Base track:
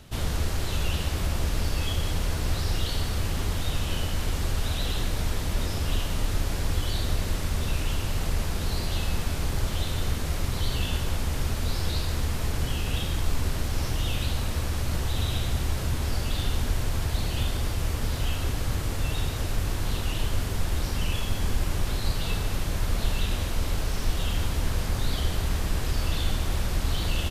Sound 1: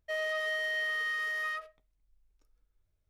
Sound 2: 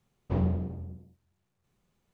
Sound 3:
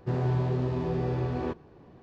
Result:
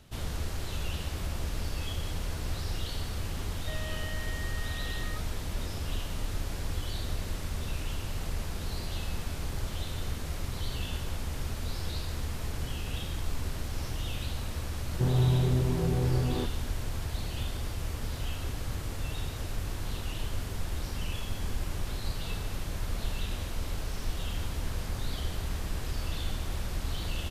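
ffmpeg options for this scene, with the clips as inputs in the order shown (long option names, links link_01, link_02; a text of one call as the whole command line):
ffmpeg -i bed.wav -i cue0.wav -i cue1.wav -i cue2.wav -filter_complex "[0:a]volume=-7dB[link_01];[1:a]alimiter=level_in=9.5dB:limit=-24dB:level=0:latency=1:release=71,volume=-9.5dB[link_02];[3:a]lowshelf=frequency=220:gain=9.5[link_03];[link_02]atrim=end=3.09,asetpts=PTS-STARTPTS,volume=-4.5dB,afade=type=in:duration=0.004:curve=hsin,afade=type=out:start_time=3.086:duration=0.004:curve=hsin,adelay=3590[link_04];[link_03]atrim=end=2.02,asetpts=PTS-STARTPTS,volume=-4.5dB,afade=type=in:duration=0.004:curve=hsin,afade=type=out:start_time=2.016:duration=0.004:curve=hsin,adelay=14930[link_05];[link_01][link_04][link_05]amix=inputs=3:normalize=0" out.wav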